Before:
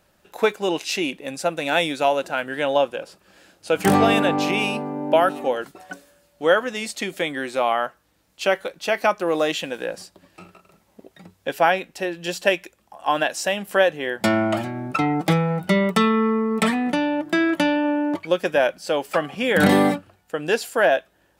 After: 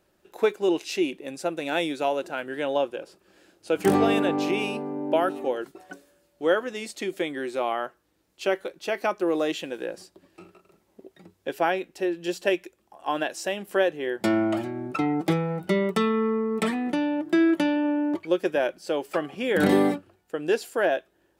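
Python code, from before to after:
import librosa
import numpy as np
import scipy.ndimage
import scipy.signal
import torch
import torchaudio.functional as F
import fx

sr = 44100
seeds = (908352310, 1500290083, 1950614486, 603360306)

y = fx.peak_eq(x, sr, hz=360.0, db=10.5, octaves=0.59)
y = F.gain(torch.from_numpy(y), -7.5).numpy()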